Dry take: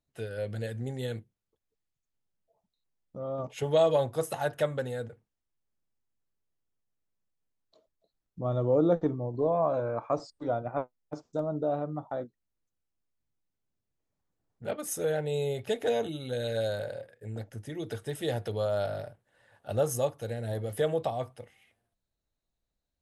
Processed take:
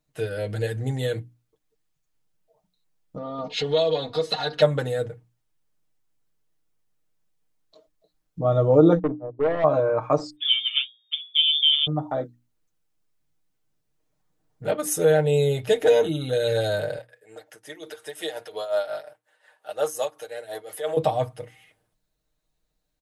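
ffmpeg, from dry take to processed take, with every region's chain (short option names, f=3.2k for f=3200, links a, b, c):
-filter_complex "[0:a]asettb=1/sr,asplit=3[a][b][c];[a]atrim=end=3.174[d];[b]atrim=start=3.17:end=4.62,asetpts=PTS-STARTPTS,afade=t=in:d=0.004:c=qsin,afade=t=out:st=1.446:d=0.004:c=qsin,aecho=1:1:4.2:0.8,atrim=end_sample=63945,acompressor=threshold=-37dB:ratio=2:attack=3.2:release=140:knee=1:detection=peak,lowpass=f=4.2k:t=q:w=8.7[e];[c]atrim=start=4.616[f];[d][e]acrossfade=d=0.004:c1=hsin:c2=qsin[g];[g][f]acrossfade=d=0.004:c1=qsin:c2=hsin,asettb=1/sr,asplit=3[h][i][j];[h]atrim=end=8.994[k];[i]atrim=start=8.99:end=9.64,asetpts=PTS-STARTPTS,afade=t=in:d=0.004:c=qsin,afade=t=out:st=0.646:d=0.004:c=qsin,agate=range=-24dB:threshold=-32dB:ratio=16:release=100:detection=peak,bandpass=f=420:t=q:w=0.58,aeval=exprs='(tanh(22.4*val(0)+0.2)-tanh(0.2))/22.4':c=same[l];[j]atrim=start=9.636[m];[k][l]acrossfade=d=0.004:c1=hsin:c2=qsin[n];[n][m]acrossfade=d=0.004:c1=qsin:c2=hsin,asettb=1/sr,asplit=3[o][p][q];[o]atrim=end=10.364[r];[p]atrim=start=10.36:end=11.87,asetpts=PTS-STARTPTS,afade=t=in:d=0.004:c=qsin,afade=t=out:st=1.506:d=0.004:c=qsin,bandreject=f=60:t=h:w=6,bandreject=f=120:t=h:w=6,bandreject=f=180:t=h:w=6,bandreject=f=240:t=h:w=6,bandreject=f=300:t=h:w=6,bandreject=f=360:t=h:w=6,bandreject=f=420:t=h:w=6,bandreject=f=480:t=h:w=6,lowpass=f=3.1k:t=q:w=0.5098,lowpass=f=3.1k:t=q:w=0.6013,lowpass=f=3.1k:t=q:w=0.9,lowpass=f=3.1k:t=q:w=2.563,afreqshift=-3700[s];[q]atrim=start=11.866[t];[r][s]acrossfade=d=0.004:c1=hsin:c2=qsin[u];[u][t]acrossfade=d=0.004:c1=qsin:c2=hsin,asettb=1/sr,asplit=3[v][w][x];[v]atrim=end=16.984[y];[w]atrim=start=16.98:end=20.97,asetpts=PTS-STARTPTS,afade=t=in:d=0.004:c=qsin,afade=t=out:st=3.986:d=0.004:c=qsin,highpass=600,tremolo=f=5.6:d=0.72[z];[x]atrim=start=20.966[aa];[y][z]acrossfade=d=0.004:c1=hsin:c2=qsin[ab];[ab][aa]acrossfade=d=0.004:c1=qsin:c2=hsin,bandreject=f=60:t=h:w=6,bandreject=f=120:t=h:w=6,bandreject=f=180:t=h:w=6,bandreject=f=240:t=h:w=6,bandreject=f=300:t=h:w=6,aecho=1:1:6.5:0.68,volume=7dB"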